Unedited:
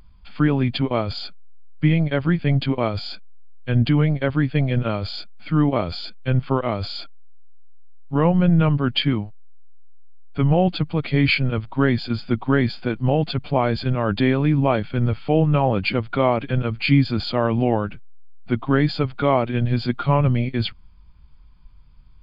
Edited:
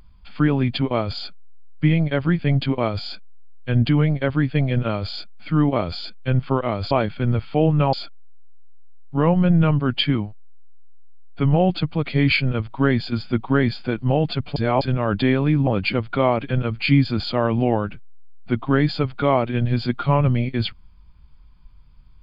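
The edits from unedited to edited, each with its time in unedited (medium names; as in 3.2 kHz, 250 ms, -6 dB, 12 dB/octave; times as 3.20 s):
13.54–13.79 s: reverse
14.65–15.67 s: move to 6.91 s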